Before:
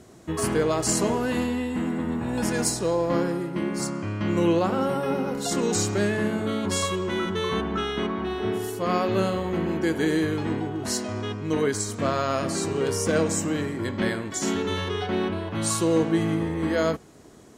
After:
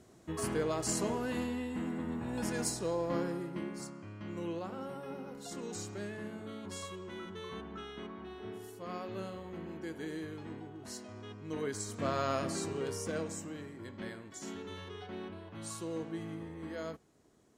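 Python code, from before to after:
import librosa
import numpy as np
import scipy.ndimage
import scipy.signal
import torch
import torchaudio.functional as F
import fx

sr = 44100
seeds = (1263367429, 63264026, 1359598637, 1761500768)

y = fx.gain(x, sr, db=fx.line((3.51, -10.0), (3.95, -17.5), (11.18, -17.5), (12.27, -7.0), (13.55, -17.5)))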